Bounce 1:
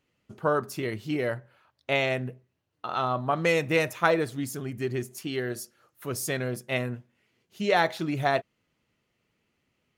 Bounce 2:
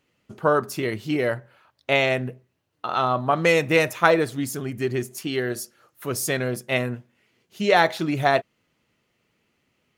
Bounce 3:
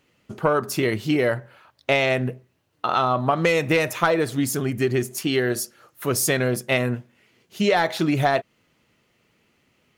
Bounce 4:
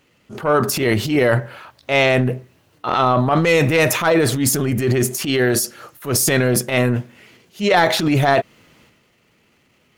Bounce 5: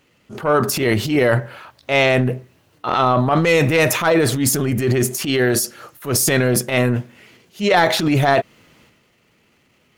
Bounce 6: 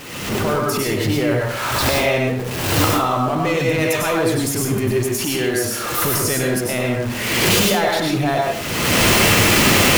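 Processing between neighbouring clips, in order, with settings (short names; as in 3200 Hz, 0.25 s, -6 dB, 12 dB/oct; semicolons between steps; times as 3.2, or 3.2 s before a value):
low shelf 110 Hz -5 dB; gain +5.5 dB
soft clip -7 dBFS, distortion -21 dB; compressor 5:1, threshold -22 dBFS, peak gain reduction 8 dB; gain +5.5 dB
transient shaper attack -10 dB, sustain +8 dB; gain +5.5 dB
nothing audible
zero-crossing step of -23 dBFS; recorder AGC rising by 37 dB/s; plate-style reverb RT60 0.52 s, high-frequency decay 0.8×, pre-delay 85 ms, DRR -1 dB; gain -8 dB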